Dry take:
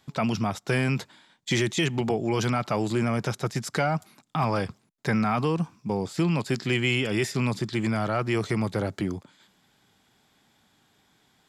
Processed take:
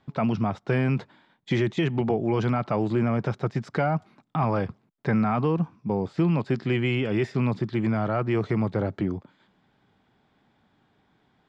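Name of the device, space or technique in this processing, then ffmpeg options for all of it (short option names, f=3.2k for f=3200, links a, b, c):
phone in a pocket: -af "lowpass=3.9k,highshelf=f=2k:g=-11,volume=2dB"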